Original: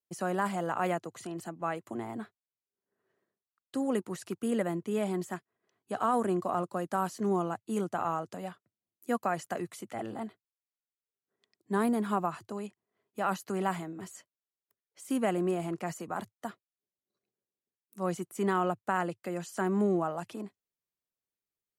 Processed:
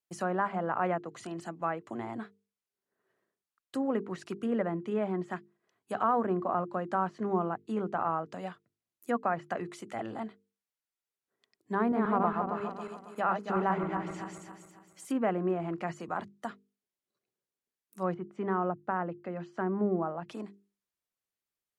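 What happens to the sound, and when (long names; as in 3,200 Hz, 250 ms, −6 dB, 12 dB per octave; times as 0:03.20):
0:11.78–0:15.05: feedback delay that plays each chunk backwards 137 ms, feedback 62%, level −3 dB
0:18.14–0:20.29: head-to-tape spacing loss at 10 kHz 33 dB
whole clip: mains-hum notches 50/100/150/200/250/300/350/400/450 Hz; treble cut that deepens with the level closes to 1,800 Hz, closed at −28.5 dBFS; parametric band 1,500 Hz +2.5 dB 1.7 octaves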